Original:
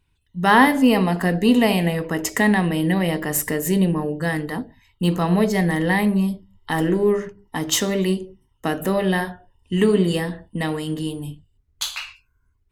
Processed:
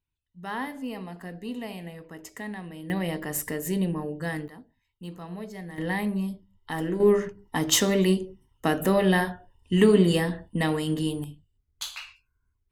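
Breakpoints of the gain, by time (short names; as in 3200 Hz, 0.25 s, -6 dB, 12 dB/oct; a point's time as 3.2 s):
-19 dB
from 2.9 s -8 dB
from 4.48 s -19.5 dB
from 5.78 s -9 dB
from 7 s -1 dB
from 11.24 s -8.5 dB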